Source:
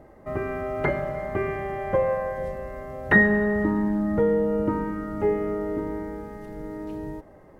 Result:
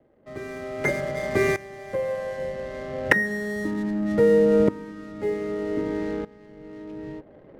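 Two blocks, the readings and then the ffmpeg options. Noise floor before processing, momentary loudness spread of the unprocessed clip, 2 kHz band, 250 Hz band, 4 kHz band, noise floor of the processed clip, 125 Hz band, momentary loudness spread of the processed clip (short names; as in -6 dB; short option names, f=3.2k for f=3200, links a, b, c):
-50 dBFS, 16 LU, -1.5 dB, -1.0 dB, n/a, -50 dBFS, -2.0 dB, 19 LU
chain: -filter_complex "[0:a]equalizer=f=125:t=o:w=1:g=7,equalizer=f=250:t=o:w=1:g=8,equalizer=f=500:t=o:w=1:g=10,equalizer=f=2k:t=o:w=1:g=10,acrossover=split=210|270|980[a][b][c][d];[d]crystalizer=i=4.5:c=0[e];[a][b][c][e]amix=inputs=4:normalize=0,adynamicsmooth=sensitivity=6:basefreq=570,aeval=exprs='val(0)*pow(10,-18*if(lt(mod(-0.64*n/s,1),2*abs(-0.64)/1000),1-mod(-0.64*n/s,1)/(2*abs(-0.64)/1000),(mod(-0.64*n/s,1)-2*abs(-0.64)/1000)/(1-2*abs(-0.64)/1000))/20)':c=same,volume=-3dB"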